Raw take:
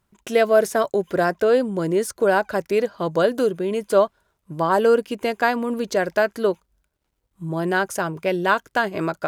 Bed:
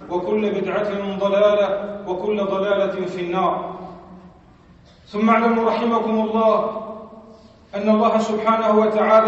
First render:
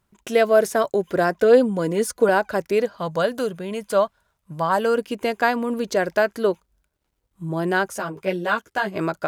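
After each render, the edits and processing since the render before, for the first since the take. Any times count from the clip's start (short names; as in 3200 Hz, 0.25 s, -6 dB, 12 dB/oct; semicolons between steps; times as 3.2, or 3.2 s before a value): 1.38–2.29 comb 4.1 ms; 2.97–4.97 bell 350 Hz -10.5 dB 0.74 oct; 7.9–8.96 ensemble effect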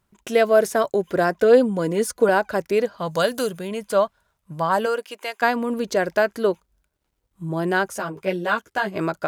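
3.07–3.67 high shelf 2600 Hz -> 4900 Hz +10.5 dB; 4.85–5.41 HPF 440 Hz -> 1100 Hz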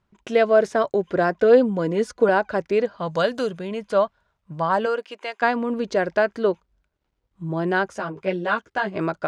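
air absorption 120 m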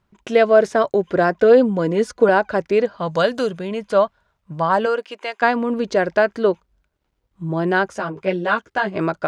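gain +3.5 dB; limiter -3 dBFS, peak gain reduction 2 dB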